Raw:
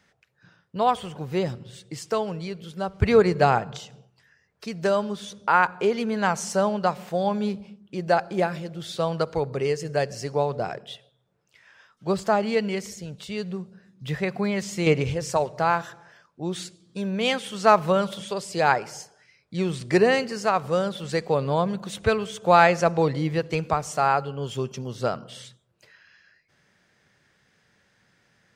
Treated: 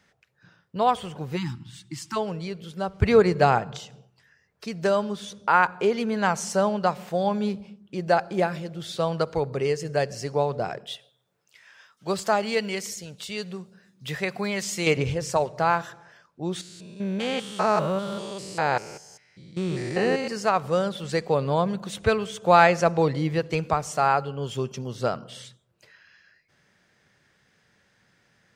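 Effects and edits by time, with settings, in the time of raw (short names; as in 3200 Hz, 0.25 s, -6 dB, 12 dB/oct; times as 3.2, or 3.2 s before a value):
1.36–2.16 spectral delete 350–810 Hz
10.86–14.97 tilt +2 dB/oct
16.61–20.28 stepped spectrum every 0.2 s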